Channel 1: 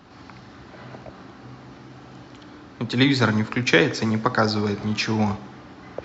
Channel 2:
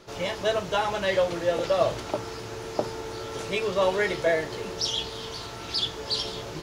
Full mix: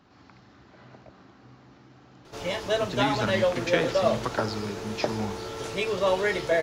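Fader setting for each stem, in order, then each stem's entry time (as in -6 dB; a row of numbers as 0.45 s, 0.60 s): -10.0 dB, -0.5 dB; 0.00 s, 2.25 s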